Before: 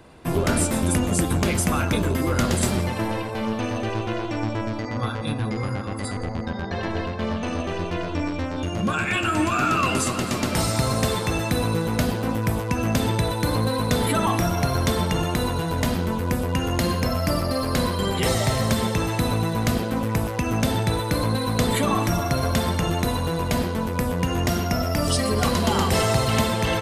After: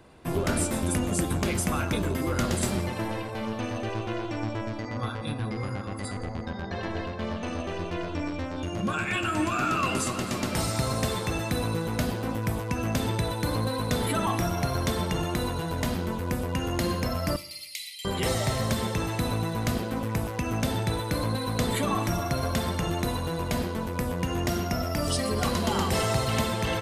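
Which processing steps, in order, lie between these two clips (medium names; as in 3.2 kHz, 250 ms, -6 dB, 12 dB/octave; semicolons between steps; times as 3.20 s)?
5.14–5.61 s: band-stop 6.7 kHz, Q 7.6; 17.36–18.05 s: Chebyshev high-pass 2 kHz, order 8; reverberation RT60 0.85 s, pre-delay 3 ms, DRR 16.5 dB; trim -5 dB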